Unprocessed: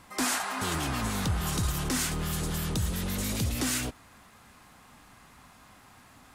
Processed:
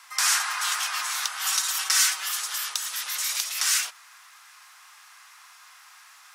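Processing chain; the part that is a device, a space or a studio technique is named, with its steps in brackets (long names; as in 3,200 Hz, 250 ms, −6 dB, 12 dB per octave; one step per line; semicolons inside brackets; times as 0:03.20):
headphones lying on a table (high-pass filter 1,100 Hz 24 dB per octave; parametric band 5,600 Hz +6 dB 0.43 octaves)
0:01.39–0:02.29: comb filter 5.3 ms, depth 87%
level +6.5 dB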